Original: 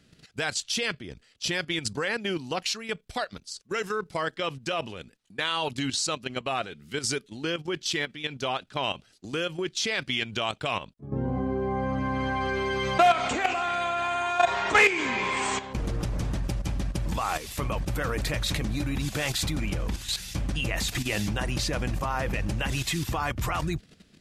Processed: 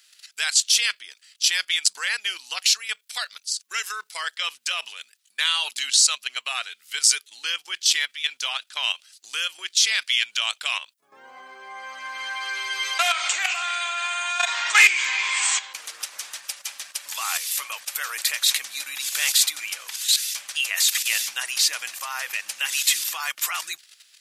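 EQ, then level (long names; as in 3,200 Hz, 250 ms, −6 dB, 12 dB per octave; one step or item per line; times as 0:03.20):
high-pass filter 1,300 Hz 12 dB per octave
spectral tilt +4 dB per octave
+2.0 dB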